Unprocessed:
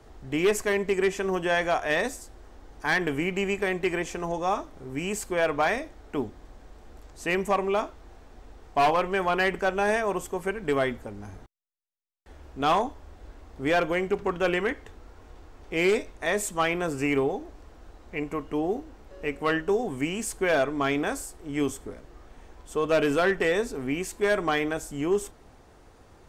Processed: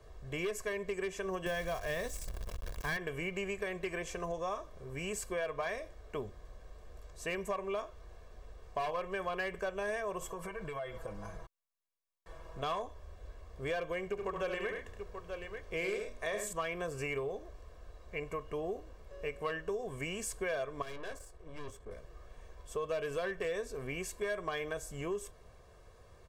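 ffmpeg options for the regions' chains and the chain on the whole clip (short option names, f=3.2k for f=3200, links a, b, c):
-filter_complex "[0:a]asettb=1/sr,asplit=3[a][b][c];[a]atrim=end=1.464[d];[b]atrim=start=1.46:end=2.97,asetpts=PTS-STARTPTS,afade=t=in:d=0.004:c=qsin,afade=t=out:st=1.506:d=0.004:c=qsin,bass=f=250:g=11,treble=f=4k:g=3,bandreject=f=1.4k:w=13,acrusher=bits=7:dc=4:mix=0:aa=0.000001[e];[c]atrim=start=2.966[f];[d][e]acrossfade=d=0.004:c1=hsin:c2=qsin[g];[g][f]acrossfade=d=0.004:c1=qsin:c2=hsin,asettb=1/sr,asplit=3[h][i][j];[h]atrim=end=10.214[k];[i]atrim=start=10.21:end=12.63,asetpts=PTS-STARTPTS,afade=t=in:d=0.004:c=qsin,afade=t=out:st=2.416:d=0.004:c=qsin,equalizer=f=930:t=o:w=1.2:g=7.5,aecho=1:1:6.1:0.88,atrim=end_sample=106722,acompressor=threshold=-31dB:ratio=12:attack=3.2:release=140:knee=1:detection=peak[l];[j]atrim=start=12.626[m];[k][l]acrossfade=d=0.004:c1=hsin:c2=qsin[n];[n][m]acrossfade=d=0.004:c1=qsin:c2=hsin,asettb=1/sr,asplit=3[o][p][q];[o]atrim=end=14.084[r];[p]atrim=start=14.08:end=16.53,asetpts=PTS-STARTPTS,afade=t=in:d=0.004:c=qsin,afade=t=out:st=2.446:d=0.004:c=qsin,bandreject=f=60:t=h:w=6,bandreject=f=120:t=h:w=6,bandreject=f=180:t=h:w=6,bandreject=f=240:t=h:w=6,bandreject=f=300:t=h:w=6,bandreject=f=360:t=h:w=6,aecho=1:1:71|104|884:0.501|0.266|0.224,atrim=end_sample=108045[s];[q]atrim=start=16.526[t];[r][s]acrossfade=d=0.004:c1=hsin:c2=qsin[u];[u][t]acrossfade=d=0.004:c1=qsin:c2=hsin,asettb=1/sr,asplit=3[v][w][x];[v]atrim=end=20.824[y];[w]atrim=start=20.82:end=21.91,asetpts=PTS-STARTPTS,afade=t=in:d=0.004:c=qsin,afade=t=out:st=1.086:d=0.004:c=qsin,lowpass=f=2.8k:p=1,aeval=exprs='(tanh(50.1*val(0)+0.65)-tanh(0.65))/50.1':c=same[z];[x]atrim=start=21.906[aa];[y][z]acrossfade=d=0.004:c1=hsin:c2=qsin[ab];[ab][aa]acrossfade=d=0.004:c1=qsin:c2=hsin,aecho=1:1:1.8:0.71,acompressor=threshold=-27dB:ratio=4,volume=-7dB"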